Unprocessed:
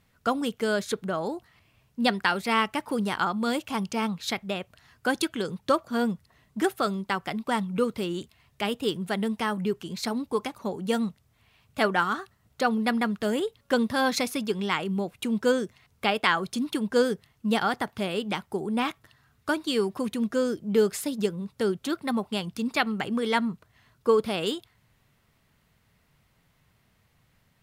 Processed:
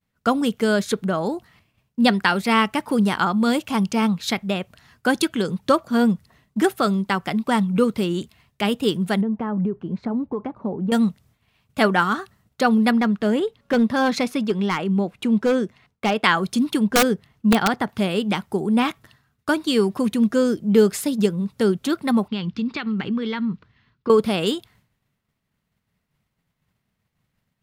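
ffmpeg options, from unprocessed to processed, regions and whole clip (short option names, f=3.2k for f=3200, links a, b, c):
-filter_complex "[0:a]asettb=1/sr,asplit=3[a][b][c];[a]atrim=end=9.214[d];[b]atrim=start=9.21:end=10.92,asetpts=PTS-STARTPTS,afade=t=in:d=0.004:c=qsin,afade=t=out:st=1.706:d=0.004:c=qsin,lowpass=1k,acompressor=threshold=-28dB:ratio=5:attack=3.2:release=140:knee=1:detection=peak[e];[c]atrim=start=10.916[f];[d][e]acrossfade=d=0.004:c1=hsin:c2=qsin[g];[g][f]acrossfade=d=0.004:c1=qsin:c2=hsin,asettb=1/sr,asplit=3[h][i][j];[h]atrim=end=12.914[k];[i]atrim=start=12.91:end=16.24,asetpts=PTS-STARTPTS,afade=t=in:d=0.004:c=qsin,afade=t=out:st=3.326:d=0.004:c=qsin,lowpass=f=2.9k:p=1,equalizer=f=80:t=o:w=1.7:g=-5.5,volume=20dB,asoftclip=hard,volume=-20dB[l];[j]atrim=start=16.236[m];[k][l]acrossfade=d=0.004:c1=hsin:c2=qsin[n];[n][m]acrossfade=d=0.004:c1=qsin:c2=hsin,asettb=1/sr,asplit=3[o][p][q];[o]atrim=end=16.844[r];[p]atrim=start=16.84:end=17.89,asetpts=PTS-STARTPTS,afade=t=in:d=0.004:c=qsin,afade=t=out:st=1.046:d=0.004:c=qsin,highshelf=f=4.5k:g=-8,aeval=exprs='(mod(5.62*val(0)+1,2)-1)/5.62':c=same[s];[q]atrim=start=17.886[t];[r][s]acrossfade=d=0.004:c1=hsin:c2=qsin[u];[u][t]acrossfade=d=0.004:c1=qsin:c2=hsin,asettb=1/sr,asplit=3[v][w][x];[v]atrim=end=22.284[y];[w]atrim=start=22.28:end=24.1,asetpts=PTS-STARTPTS,afade=t=in:d=0.004:c=qsin,afade=t=out:st=1.816:d=0.004:c=qsin,lowpass=f=4.6k:w=0.5412,lowpass=f=4.6k:w=1.3066,equalizer=f=660:t=o:w=0.65:g=-9.5,acompressor=threshold=-29dB:ratio=6:attack=3.2:release=140:knee=1:detection=peak[z];[x]atrim=start=24.096[aa];[y][z]acrossfade=d=0.004:c1=hsin:c2=qsin[ab];[ab][aa]acrossfade=d=0.004:c1=qsin:c2=hsin,agate=range=-33dB:threshold=-55dB:ratio=3:detection=peak,equalizer=f=200:t=o:w=1:g=5,volume=5dB"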